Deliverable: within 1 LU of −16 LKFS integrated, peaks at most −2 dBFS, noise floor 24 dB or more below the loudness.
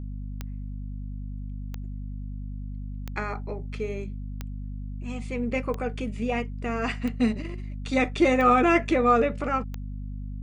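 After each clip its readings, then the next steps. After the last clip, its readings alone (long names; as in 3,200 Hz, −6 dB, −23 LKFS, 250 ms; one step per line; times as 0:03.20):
number of clicks 8; mains hum 50 Hz; hum harmonics up to 250 Hz; level of the hum −32 dBFS; integrated loudness −28.0 LKFS; sample peak −8.5 dBFS; target loudness −16.0 LKFS
→ click removal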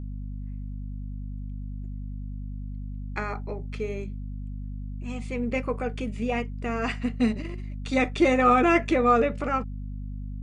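number of clicks 0; mains hum 50 Hz; hum harmonics up to 250 Hz; level of the hum −32 dBFS
→ mains-hum notches 50/100/150/200/250 Hz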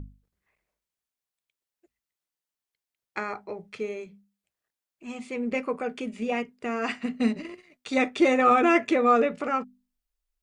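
mains hum none found; integrated loudness −26.0 LKFS; sample peak −8.5 dBFS; target loudness −16.0 LKFS
→ level +10 dB
brickwall limiter −2 dBFS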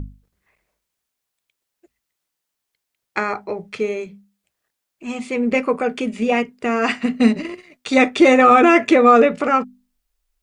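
integrated loudness −16.5 LKFS; sample peak −2.0 dBFS; background noise floor −80 dBFS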